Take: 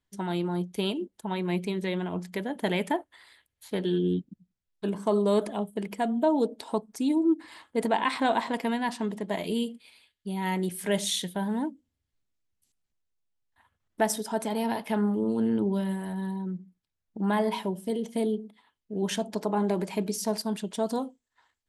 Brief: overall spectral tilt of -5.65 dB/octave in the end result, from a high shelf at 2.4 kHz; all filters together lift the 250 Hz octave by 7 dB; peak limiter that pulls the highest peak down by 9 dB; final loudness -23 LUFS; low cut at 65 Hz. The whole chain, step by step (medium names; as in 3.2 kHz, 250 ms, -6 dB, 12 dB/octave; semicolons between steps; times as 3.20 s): high-pass 65 Hz; peaking EQ 250 Hz +9 dB; treble shelf 2.4 kHz +3.5 dB; trim +4 dB; peak limiter -13.5 dBFS